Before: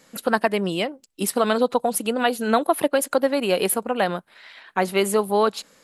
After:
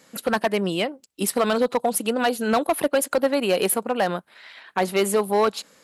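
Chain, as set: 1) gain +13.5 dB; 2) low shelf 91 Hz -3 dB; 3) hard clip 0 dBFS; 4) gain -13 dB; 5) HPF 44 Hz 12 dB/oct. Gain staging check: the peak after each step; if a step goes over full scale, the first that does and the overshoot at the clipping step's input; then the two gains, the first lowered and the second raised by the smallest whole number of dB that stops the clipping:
+9.5, +9.5, 0.0, -13.0, -11.0 dBFS; step 1, 9.5 dB; step 1 +3.5 dB, step 4 -3 dB

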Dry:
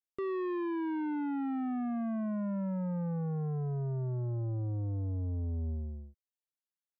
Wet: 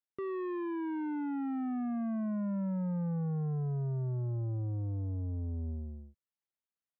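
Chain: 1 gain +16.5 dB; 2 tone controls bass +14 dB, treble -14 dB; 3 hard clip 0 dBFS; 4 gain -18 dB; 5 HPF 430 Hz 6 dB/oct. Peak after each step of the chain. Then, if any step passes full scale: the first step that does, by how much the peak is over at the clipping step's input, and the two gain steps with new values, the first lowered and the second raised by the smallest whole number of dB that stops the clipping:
-16.0, -1.5, -1.5, -19.5, -29.5 dBFS; no overload

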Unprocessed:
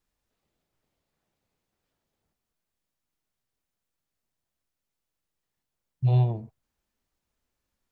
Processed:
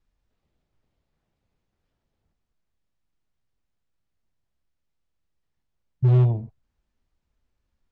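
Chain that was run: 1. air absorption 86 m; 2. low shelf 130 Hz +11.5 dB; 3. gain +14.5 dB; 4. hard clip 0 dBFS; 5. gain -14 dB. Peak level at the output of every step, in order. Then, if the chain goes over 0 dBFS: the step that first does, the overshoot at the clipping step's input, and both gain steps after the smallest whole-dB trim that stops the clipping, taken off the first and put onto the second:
-13.0, -9.0, +5.5, 0.0, -14.0 dBFS; step 3, 5.5 dB; step 3 +8.5 dB, step 5 -8 dB

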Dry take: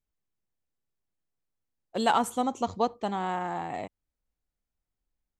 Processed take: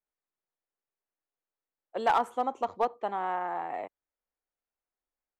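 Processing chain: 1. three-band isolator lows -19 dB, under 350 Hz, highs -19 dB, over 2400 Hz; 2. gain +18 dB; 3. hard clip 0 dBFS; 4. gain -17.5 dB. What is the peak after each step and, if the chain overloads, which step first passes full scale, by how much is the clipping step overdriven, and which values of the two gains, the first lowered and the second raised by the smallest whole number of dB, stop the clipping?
-12.5, +5.5, 0.0, -17.5 dBFS; step 2, 5.5 dB; step 2 +12 dB, step 4 -11.5 dB

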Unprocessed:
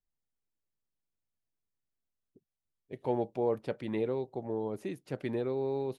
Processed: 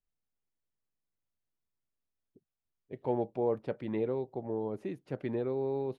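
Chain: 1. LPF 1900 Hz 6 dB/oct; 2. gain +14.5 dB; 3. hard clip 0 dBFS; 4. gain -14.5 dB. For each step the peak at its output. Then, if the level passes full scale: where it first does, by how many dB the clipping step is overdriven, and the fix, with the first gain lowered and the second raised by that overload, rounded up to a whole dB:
-17.5, -3.0, -3.0, -17.5 dBFS; no overload

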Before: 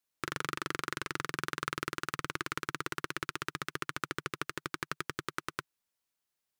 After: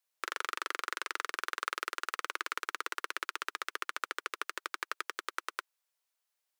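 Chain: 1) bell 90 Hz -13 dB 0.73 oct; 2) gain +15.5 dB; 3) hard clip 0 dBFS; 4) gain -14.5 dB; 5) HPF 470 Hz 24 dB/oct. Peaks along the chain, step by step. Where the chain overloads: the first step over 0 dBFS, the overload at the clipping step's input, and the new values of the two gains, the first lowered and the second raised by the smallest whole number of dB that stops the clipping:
-12.5, +3.0, 0.0, -14.5, -16.0 dBFS; step 2, 3.0 dB; step 2 +12.5 dB, step 4 -11.5 dB

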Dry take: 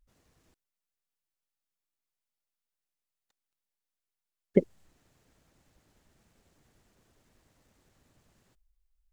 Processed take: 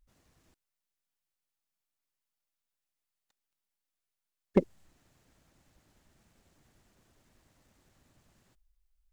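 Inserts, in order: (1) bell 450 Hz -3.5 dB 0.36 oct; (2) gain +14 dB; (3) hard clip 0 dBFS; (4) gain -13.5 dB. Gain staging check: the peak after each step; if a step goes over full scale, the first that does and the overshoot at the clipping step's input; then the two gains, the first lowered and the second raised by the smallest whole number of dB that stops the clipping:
-7.5, +6.5, 0.0, -13.5 dBFS; step 2, 6.5 dB; step 2 +7 dB, step 4 -6.5 dB

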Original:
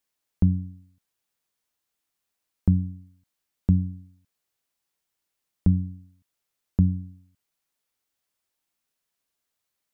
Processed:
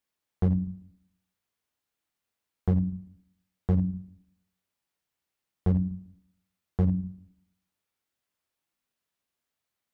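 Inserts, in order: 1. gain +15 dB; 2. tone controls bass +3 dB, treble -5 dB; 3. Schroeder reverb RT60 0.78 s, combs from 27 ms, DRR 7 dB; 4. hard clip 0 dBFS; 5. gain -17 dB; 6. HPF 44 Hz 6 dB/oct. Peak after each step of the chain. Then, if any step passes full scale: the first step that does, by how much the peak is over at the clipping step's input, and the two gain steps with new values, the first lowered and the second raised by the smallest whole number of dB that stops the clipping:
+6.5, +9.0, +9.0, 0.0, -17.0, -14.0 dBFS; step 1, 9.0 dB; step 1 +6 dB, step 5 -8 dB

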